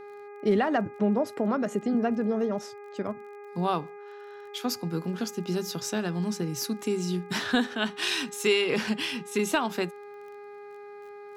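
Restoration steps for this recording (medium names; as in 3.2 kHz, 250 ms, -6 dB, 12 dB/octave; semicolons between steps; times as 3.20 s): de-click; de-hum 409.7 Hz, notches 6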